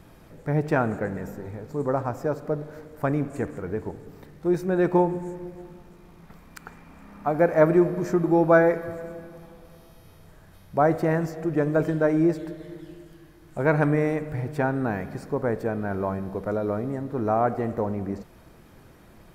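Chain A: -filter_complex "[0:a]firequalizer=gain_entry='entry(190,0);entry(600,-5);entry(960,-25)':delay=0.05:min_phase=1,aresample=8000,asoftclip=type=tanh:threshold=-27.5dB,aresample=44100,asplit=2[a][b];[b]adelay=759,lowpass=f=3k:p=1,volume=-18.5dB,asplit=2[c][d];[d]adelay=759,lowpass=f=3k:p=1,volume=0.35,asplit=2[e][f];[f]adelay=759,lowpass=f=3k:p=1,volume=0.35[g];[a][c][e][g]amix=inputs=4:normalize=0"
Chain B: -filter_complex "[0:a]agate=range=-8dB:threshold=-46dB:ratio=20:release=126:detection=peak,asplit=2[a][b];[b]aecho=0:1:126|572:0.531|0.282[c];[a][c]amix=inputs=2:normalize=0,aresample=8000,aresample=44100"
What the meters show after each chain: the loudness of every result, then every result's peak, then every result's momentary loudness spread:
-34.0, -24.0 LUFS; -26.0, -5.5 dBFS; 19, 15 LU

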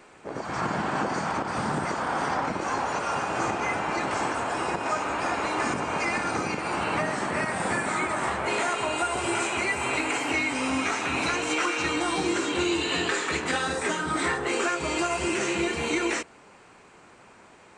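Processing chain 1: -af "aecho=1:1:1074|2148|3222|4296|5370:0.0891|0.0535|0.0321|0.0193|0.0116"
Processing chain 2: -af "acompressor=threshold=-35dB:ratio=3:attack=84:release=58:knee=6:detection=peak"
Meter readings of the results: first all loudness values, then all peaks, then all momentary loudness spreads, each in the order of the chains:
-27.0, -30.5 LUFS; -15.0, -18.0 dBFS; 3, 2 LU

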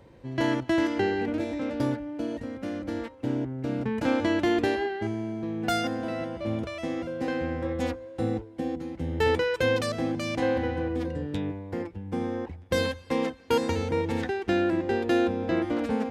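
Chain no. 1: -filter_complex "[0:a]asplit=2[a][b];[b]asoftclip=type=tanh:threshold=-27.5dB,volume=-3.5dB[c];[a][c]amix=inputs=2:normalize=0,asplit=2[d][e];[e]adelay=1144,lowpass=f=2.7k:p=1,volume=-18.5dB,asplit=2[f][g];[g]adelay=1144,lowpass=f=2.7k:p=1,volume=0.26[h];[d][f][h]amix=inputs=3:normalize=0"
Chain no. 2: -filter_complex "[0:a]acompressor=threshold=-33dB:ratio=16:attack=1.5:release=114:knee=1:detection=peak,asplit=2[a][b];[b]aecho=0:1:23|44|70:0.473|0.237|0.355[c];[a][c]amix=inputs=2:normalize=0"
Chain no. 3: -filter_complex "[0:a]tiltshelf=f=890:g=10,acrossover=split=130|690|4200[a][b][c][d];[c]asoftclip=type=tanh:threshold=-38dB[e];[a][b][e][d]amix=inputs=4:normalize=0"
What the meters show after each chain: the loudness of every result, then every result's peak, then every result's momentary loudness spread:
-26.0, -37.5, -22.5 LUFS; -11.0, -22.0, -7.0 dBFS; 7, 3, 7 LU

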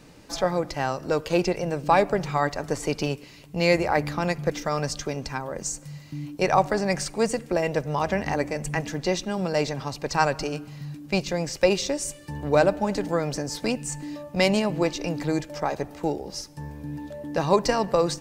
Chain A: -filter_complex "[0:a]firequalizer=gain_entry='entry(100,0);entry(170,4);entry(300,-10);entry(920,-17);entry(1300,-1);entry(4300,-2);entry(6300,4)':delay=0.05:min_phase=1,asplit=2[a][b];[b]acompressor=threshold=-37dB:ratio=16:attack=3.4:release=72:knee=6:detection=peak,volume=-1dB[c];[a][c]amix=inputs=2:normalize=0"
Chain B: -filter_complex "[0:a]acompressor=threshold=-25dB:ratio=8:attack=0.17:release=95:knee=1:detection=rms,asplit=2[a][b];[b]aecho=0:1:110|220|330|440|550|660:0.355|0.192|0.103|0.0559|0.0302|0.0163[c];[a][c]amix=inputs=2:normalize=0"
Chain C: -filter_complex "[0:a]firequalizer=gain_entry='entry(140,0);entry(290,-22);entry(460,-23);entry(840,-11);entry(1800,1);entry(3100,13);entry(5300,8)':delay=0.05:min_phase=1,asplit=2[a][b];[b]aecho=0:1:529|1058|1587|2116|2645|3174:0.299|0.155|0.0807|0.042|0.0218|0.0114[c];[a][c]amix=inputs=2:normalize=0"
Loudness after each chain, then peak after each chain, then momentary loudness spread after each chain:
-27.5, -33.5, -25.5 LUFS; -10.0, -19.5, -2.0 dBFS; 8, 4, 12 LU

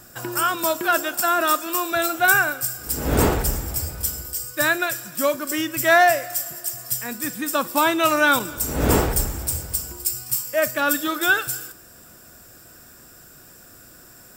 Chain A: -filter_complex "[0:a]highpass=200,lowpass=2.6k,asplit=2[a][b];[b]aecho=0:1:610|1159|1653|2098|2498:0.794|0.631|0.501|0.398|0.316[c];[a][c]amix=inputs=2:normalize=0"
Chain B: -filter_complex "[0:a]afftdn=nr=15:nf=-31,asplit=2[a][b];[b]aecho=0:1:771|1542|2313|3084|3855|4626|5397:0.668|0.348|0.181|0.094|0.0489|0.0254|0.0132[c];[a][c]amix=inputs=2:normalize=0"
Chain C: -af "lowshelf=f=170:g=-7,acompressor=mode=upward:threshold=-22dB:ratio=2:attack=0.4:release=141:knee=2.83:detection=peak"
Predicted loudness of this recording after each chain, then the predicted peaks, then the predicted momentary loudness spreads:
-20.0, -20.0, -21.5 LUFS; -2.0, -2.5, -3.0 dBFS; 8, 12, 19 LU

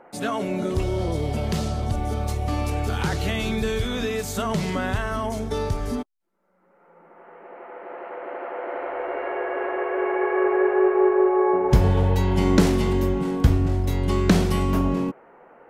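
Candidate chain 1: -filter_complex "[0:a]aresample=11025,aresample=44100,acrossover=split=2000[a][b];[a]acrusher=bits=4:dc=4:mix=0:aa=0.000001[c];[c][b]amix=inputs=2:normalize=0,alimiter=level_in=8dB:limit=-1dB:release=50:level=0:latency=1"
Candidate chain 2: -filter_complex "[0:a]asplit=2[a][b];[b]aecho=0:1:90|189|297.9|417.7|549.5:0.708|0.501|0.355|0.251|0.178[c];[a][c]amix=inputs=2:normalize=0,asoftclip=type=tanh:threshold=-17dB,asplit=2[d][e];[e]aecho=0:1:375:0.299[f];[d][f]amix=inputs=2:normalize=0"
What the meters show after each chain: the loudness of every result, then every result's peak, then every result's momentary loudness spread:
-15.0, -24.0 LUFS; -1.0, -15.0 dBFS; 16, 10 LU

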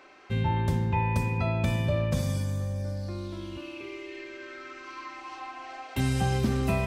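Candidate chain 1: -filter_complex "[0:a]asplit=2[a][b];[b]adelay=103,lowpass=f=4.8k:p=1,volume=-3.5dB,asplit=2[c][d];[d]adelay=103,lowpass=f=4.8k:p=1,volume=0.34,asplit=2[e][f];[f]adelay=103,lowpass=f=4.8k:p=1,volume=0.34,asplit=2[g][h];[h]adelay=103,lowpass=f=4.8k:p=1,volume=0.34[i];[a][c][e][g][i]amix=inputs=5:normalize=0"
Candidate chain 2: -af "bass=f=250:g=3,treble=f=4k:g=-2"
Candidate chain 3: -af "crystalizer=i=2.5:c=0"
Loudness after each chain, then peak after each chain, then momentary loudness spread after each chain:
-27.5, -26.5, -29.0 LUFS; -11.5, -12.0, -12.5 dBFS; 14, 16, 14 LU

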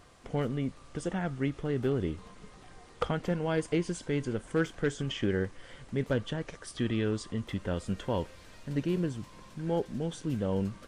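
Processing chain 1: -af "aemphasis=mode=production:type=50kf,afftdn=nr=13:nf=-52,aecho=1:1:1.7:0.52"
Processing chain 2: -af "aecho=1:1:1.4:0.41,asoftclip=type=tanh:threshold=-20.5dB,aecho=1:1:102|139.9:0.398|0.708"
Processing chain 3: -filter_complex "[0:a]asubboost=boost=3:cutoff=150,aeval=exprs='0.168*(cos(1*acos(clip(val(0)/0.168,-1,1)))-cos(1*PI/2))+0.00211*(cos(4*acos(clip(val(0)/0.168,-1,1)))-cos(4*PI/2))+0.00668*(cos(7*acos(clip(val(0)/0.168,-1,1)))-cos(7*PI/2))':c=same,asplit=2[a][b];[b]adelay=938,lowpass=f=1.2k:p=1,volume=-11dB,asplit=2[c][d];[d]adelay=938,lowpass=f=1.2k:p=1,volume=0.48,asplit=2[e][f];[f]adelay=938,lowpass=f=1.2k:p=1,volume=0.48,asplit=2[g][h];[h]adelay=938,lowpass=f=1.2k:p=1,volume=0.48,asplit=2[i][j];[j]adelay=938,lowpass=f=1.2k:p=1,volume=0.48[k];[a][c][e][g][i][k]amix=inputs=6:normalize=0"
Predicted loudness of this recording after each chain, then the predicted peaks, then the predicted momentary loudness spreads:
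-32.5, -32.5, -32.5 LUFS; -13.5, -17.0, -15.5 dBFS; 7, 8, 11 LU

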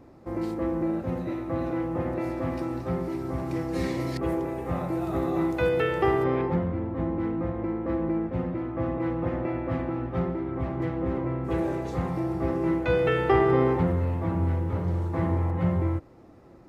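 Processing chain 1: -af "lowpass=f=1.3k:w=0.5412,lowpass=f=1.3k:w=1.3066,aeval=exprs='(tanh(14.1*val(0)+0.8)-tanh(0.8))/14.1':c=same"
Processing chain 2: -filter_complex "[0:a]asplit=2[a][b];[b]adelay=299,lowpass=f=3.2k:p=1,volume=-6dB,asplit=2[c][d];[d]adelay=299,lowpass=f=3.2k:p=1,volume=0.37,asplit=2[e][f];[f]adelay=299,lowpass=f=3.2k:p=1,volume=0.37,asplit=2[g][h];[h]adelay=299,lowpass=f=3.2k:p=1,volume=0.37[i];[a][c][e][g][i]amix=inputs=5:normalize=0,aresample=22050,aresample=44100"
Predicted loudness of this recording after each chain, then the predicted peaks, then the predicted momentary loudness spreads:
-33.0, -27.0 LUFS; -18.5, -9.5 dBFS; 6, 6 LU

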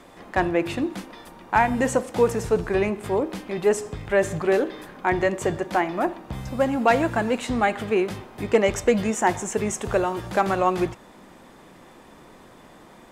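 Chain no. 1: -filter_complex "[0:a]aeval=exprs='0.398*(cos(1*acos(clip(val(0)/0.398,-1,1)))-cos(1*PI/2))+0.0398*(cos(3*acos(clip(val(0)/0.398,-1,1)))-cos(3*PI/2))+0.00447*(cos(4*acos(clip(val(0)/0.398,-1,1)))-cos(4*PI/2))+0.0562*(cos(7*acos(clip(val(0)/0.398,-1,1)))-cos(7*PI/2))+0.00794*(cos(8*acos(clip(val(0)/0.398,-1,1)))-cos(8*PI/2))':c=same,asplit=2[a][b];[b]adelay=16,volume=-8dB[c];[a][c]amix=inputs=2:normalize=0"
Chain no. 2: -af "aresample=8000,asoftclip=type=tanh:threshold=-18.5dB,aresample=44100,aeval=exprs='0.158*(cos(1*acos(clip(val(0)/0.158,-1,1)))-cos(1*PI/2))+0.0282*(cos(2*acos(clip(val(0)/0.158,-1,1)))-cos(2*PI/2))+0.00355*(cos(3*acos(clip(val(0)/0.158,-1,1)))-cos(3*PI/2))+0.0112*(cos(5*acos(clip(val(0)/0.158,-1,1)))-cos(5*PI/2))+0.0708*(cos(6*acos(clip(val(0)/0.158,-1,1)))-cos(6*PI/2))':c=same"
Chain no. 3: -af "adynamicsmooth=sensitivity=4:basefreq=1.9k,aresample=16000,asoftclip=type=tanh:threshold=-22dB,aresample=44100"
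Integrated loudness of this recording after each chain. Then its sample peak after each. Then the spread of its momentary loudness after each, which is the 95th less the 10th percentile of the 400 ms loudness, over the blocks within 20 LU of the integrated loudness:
-25.5, -24.0, -29.0 LUFS; -4.0, -12.5, -20.5 dBFS; 11, 6, 6 LU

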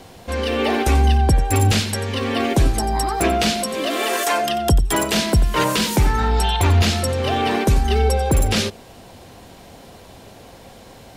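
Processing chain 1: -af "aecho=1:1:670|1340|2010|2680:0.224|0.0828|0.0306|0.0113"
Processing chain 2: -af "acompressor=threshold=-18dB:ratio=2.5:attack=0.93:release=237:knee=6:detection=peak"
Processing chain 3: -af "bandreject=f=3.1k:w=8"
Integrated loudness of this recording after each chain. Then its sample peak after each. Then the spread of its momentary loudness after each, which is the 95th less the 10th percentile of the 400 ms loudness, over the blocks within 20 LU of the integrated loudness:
-19.0, -23.0, -19.0 LUFS; -6.0, -11.0, -5.5 dBFS; 14, 21, 6 LU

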